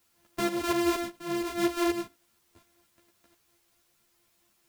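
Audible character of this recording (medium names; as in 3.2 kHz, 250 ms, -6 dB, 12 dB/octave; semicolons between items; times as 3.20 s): a buzz of ramps at a fixed pitch in blocks of 128 samples; tremolo saw up 4.2 Hz, depth 65%; a quantiser's noise floor 12-bit, dither triangular; a shimmering, thickened sound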